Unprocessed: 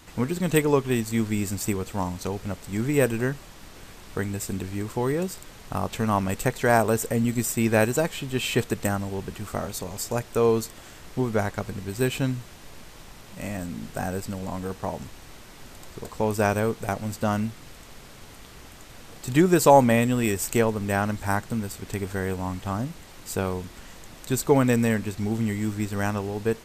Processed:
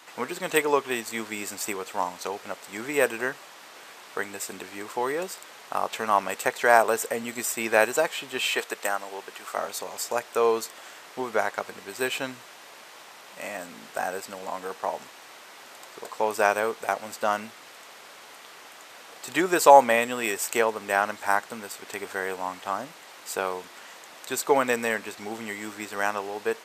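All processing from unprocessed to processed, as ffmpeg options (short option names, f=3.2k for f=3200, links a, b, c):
-filter_complex "[0:a]asettb=1/sr,asplit=3[a][b][c];[a]atrim=end=8.504[d];[b]atrim=start=8.5:end=9.58,asetpts=PTS-STARTPTS,afade=t=in:d=0.004:c=qsin,afade=t=out:st=1.076:d=0.004:c=qsin,equalizer=f=120:w=0.71:g=-14,asoftclip=type=hard:threshold=-12.5dB[e];[c]atrim=start=9.576[f];[d][e]acrossfade=d=0.004:c1=hsin:c2=qsin[g];[g][f]acrossfade=d=0.004:c1=qsin:c2=hsin,highpass=630,highshelf=f=3.9k:g=-6.5,volume=5dB"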